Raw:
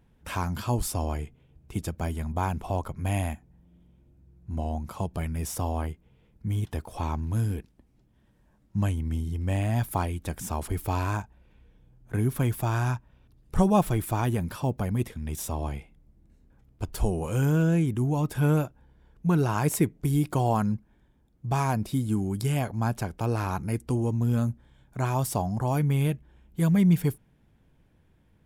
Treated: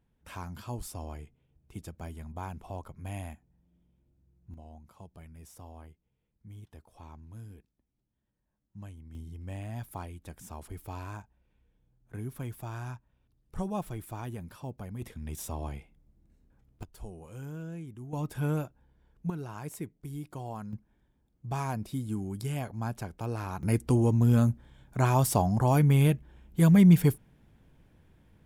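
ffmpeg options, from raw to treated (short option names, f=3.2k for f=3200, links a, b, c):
-af "asetnsamples=n=441:p=0,asendcmd='4.54 volume volume -19dB;9.15 volume volume -12.5dB;15.02 volume volume -5.5dB;16.83 volume volume -17.5dB;18.13 volume volume -7dB;19.3 volume volume -15dB;20.73 volume volume -7dB;23.63 volume volume 2.5dB',volume=-11dB"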